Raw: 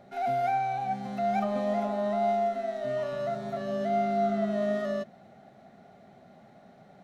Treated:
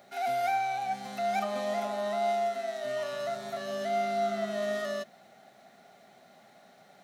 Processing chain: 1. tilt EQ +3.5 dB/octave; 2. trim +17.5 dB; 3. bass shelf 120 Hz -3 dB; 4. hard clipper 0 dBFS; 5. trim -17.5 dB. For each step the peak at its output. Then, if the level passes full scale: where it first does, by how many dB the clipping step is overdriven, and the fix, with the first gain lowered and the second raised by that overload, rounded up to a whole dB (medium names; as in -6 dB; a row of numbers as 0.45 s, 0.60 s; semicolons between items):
-19.0 dBFS, -1.5 dBFS, -1.5 dBFS, -1.5 dBFS, -19.0 dBFS; nothing clips